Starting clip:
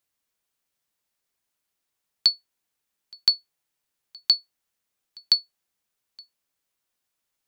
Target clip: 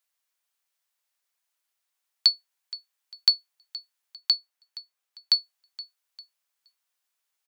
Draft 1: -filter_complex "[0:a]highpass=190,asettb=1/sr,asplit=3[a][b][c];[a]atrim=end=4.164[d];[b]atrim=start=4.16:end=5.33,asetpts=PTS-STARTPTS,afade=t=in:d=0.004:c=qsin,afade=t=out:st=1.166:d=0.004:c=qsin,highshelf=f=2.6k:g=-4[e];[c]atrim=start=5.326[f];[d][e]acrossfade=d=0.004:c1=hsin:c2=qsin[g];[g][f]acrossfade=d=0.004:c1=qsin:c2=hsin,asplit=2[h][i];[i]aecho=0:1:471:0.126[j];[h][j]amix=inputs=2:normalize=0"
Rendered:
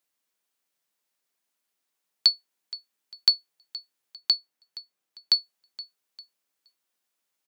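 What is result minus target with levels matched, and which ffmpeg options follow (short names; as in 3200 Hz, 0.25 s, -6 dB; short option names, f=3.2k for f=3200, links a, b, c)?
250 Hz band +15.0 dB
-filter_complex "[0:a]highpass=720,asettb=1/sr,asplit=3[a][b][c];[a]atrim=end=4.164[d];[b]atrim=start=4.16:end=5.33,asetpts=PTS-STARTPTS,afade=t=in:d=0.004:c=qsin,afade=t=out:st=1.166:d=0.004:c=qsin,highshelf=f=2.6k:g=-4[e];[c]atrim=start=5.326[f];[d][e]acrossfade=d=0.004:c1=hsin:c2=qsin[g];[g][f]acrossfade=d=0.004:c1=qsin:c2=hsin,asplit=2[h][i];[i]aecho=0:1:471:0.126[j];[h][j]amix=inputs=2:normalize=0"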